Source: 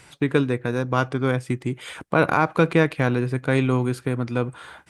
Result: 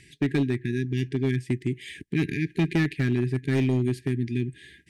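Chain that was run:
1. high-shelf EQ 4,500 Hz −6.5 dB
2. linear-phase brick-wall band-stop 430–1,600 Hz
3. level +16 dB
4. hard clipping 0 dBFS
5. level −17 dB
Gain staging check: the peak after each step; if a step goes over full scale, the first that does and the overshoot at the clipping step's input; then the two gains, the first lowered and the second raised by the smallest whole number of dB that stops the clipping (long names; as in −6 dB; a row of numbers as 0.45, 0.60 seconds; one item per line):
−5.0, −8.5, +7.5, 0.0, −17.0 dBFS
step 3, 7.5 dB
step 3 +8 dB, step 5 −9 dB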